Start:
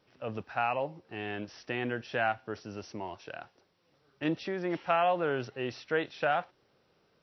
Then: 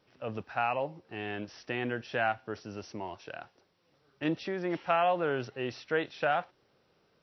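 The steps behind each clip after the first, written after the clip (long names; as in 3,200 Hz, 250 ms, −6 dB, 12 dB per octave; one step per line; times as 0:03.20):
no processing that can be heard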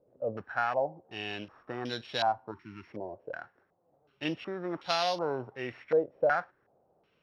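samples sorted by size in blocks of 8 samples
time-frequency box erased 0:02.51–0:02.87, 400–870 Hz
low-pass on a step sequencer 2.7 Hz 550–3,700 Hz
level −3.5 dB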